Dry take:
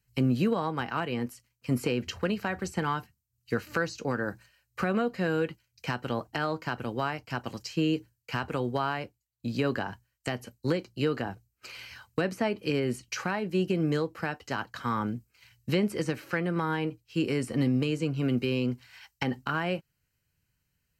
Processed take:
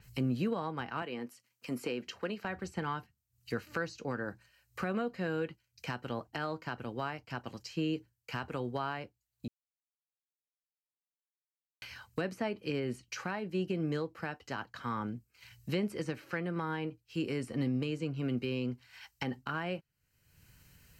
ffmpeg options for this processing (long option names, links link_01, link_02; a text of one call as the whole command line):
ffmpeg -i in.wav -filter_complex "[0:a]asettb=1/sr,asplit=3[link_01][link_02][link_03];[link_01]atrim=end=1.024[link_04];[link_02]atrim=start=1.02:end=2.45,asetpts=PTS-STARTPTS,afade=type=in:duration=0.004:curve=qsin,afade=type=out:start_time=1.426:duration=0.004:curve=qsin,highpass=230[link_05];[link_03]atrim=start=2.446[link_06];[link_04][link_05]acrossfade=duration=0.004:curve1=hsin:curve2=qsin[link_07];[link_07][link_06]acrossfade=duration=0.004:curve1=qsin:curve2=hsin,asplit=3[link_08][link_09][link_10];[link_08]atrim=end=9.48,asetpts=PTS-STARTPTS,afade=type=out:start_time=9.476:duration=0.004:curve=hsin[link_11];[link_09]atrim=start=9.48:end=11.82,asetpts=PTS-STARTPTS,volume=0[link_12];[link_10]atrim=start=11.82,asetpts=PTS-STARTPTS,afade=type=in:duration=0.004:curve=hsin[link_13];[link_11][link_12][link_13]concat=n=3:v=0:a=1,acompressor=mode=upward:threshold=-34dB:ratio=2.5,adynamicequalizer=threshold=0.00224:dfrequency=5900:dqfactor=0.7:tfrequency=5900:tqfactor=0.7:attack=5:release=100:ratio=0.375:range=3.5:mode=cutabove:tftype=highshelf,volume=-6.5dB" out.wav